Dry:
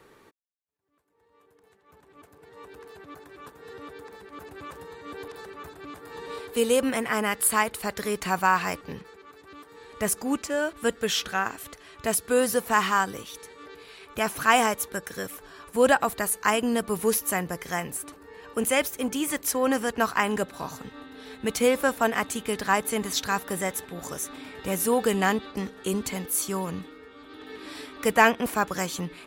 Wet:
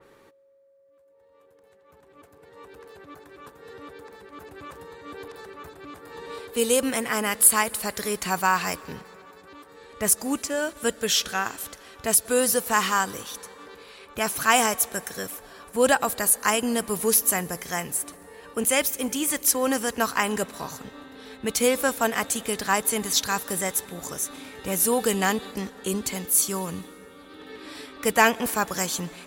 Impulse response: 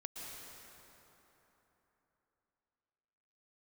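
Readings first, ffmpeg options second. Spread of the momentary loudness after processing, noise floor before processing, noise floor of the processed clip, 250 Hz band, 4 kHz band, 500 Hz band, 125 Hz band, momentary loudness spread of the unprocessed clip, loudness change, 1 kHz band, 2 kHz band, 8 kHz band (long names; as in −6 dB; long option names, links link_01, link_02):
21 LU, −61 dBFS, −57 dBFS, −0.5 dB, +3.5 dB, −0.5 dB, −0.5 dB, 20 LU, +2.5 dB, −0.5 dB, +0.5 dB, +7.0 dB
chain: -filter_complex "[0:a]aeval=exprs='val(0)+0.00141*sin(2*PI*550*n/s)':channel_layout=same,asplit=2[link_01][link_02];[1:a]atrim=start_sample=2205[link_03];[link_02][link_03]afir=irnorm=-1:irlink=0,volume=-17dB[link_04];[link_01][link_04]amix=inputs=2:normalize=0,adynamicequalizer=threshold=0.00891:dfrequency=3500:dqfactor=0.7:tfrequency=3500:tqfactor=0.7:attack=5:release=100:ratio=0.375:range=4:mode=boostabove:tftype=highshelf,volume=-1dB"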